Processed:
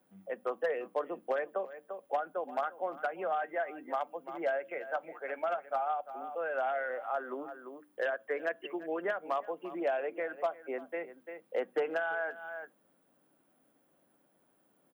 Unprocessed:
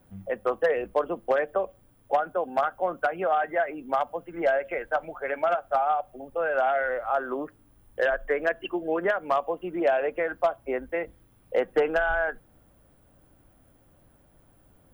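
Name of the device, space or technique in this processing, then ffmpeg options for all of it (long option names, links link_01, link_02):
ducked delay: -filter_complex "[0:a]highpass=frequency=190:width=0.5412,highpass=frequency=190:width=1.3066,asplit=3[link_01][link_02][link_03];[link_02]adelay=345,volume=-7.5dB[link_04];[link_03]apad=whole_len=673729[link_05];[link_04][link_05]sidechaincompress=threshold=-37dB:ratio=8:attack=9.7:release=202[link_06];[link_01][link_06]amix=inputs=2:normalize=0,bandreject=frequency=60:width_type=h:width=6,bandreject=frequency=120:width_type=h:width=6,bandreject=frequency=180:width_type=h:width=6,bandreject=frequency=240:width_type=h:width=6,bandreject=frequency=300:width_type=h:width=6,volume=-8.5dB"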